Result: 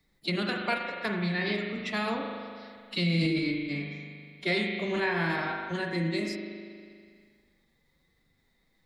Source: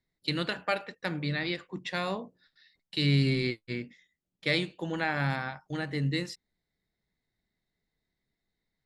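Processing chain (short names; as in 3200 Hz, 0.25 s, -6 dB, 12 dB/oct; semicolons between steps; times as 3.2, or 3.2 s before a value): spring tank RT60 1.5 s, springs 40 ms, chirp 65 ms, DRR 1.5 dB; formant-preserving pitch shift +3 st; three-band squash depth 40%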